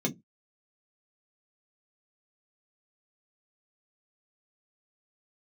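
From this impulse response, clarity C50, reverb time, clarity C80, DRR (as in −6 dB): 23.5 dB, 0.15 s, 32.5 dB, 0.0 dB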